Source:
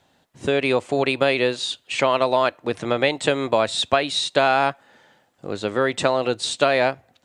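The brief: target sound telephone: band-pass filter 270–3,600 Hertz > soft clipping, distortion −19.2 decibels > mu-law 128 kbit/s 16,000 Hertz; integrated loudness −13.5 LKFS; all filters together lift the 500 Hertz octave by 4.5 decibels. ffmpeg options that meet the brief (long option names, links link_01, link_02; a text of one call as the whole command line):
ffmpeg -i in.wav -af "highpass=270,lowpass=3600,equalizer=frequency=500:width_type=o:gain=6,asoftclip=threshold=-7dB,volume=6.5dB" -ar 16000 -c:a pcm_mulaw out.wav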